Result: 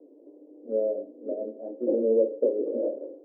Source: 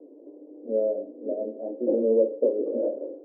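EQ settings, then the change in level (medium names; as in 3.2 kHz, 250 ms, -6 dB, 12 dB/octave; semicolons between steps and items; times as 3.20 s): dynamic bell 390 Hz, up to +4 dB, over -31 dBFS, Q 0.97; -4.5 dB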